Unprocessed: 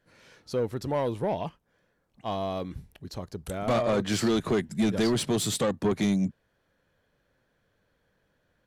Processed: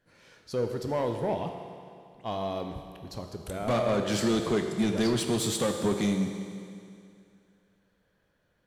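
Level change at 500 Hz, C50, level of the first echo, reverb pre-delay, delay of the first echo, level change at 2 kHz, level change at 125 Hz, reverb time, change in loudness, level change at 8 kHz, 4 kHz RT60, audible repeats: −0.5 dB, 5.5 dB, no echo audible, 16 ms, no echo audible, −1.0 dB, −1.5 dB, 2.4 s, −1.5 dB, −0.5 dB, 2.4 s, no echo audible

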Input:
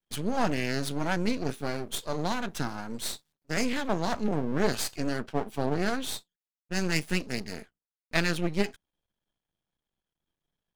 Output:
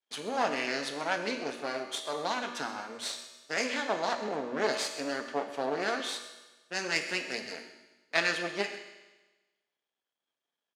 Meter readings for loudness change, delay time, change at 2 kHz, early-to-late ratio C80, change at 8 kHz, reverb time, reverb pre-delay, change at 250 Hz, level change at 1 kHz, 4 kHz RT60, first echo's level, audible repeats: −2.0 dB, 130 ms, +1.5 dB, 8.5 dB, −2.5 dB, 1.2 s, 3 ms, −9.0 dB, +0.5 dB, 1.2 s, −16.0 dB, 1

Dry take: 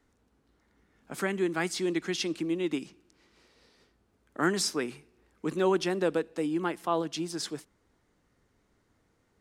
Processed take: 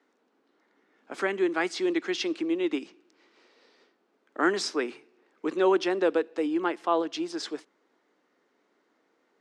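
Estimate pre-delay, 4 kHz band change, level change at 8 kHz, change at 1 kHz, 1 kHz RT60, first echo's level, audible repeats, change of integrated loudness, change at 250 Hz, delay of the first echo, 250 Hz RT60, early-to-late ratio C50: no reverb audible, +0.5 dB, −5.0 dB, +3.5 dB, no reverb audible, no echo audible, no echo audible, +2.5 dB, +2.0 dB, no echo audible, no reverb audible, no reverb audible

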